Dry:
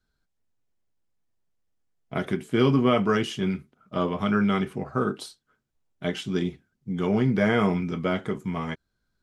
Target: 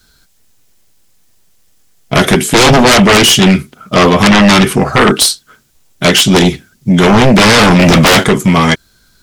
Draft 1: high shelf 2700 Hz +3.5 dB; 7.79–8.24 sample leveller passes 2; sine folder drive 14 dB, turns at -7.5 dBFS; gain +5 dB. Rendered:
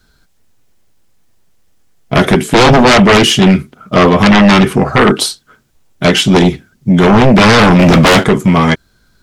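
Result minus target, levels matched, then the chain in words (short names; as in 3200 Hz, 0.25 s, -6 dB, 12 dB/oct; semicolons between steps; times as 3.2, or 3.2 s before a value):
4000 Hz band -3.0 dB
high shelf 2700 Hz +13.5 dB; 7.79–8.24 sample leveller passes 2; sine folder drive 14 dB, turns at -7.5 dBFS; gain +5 dB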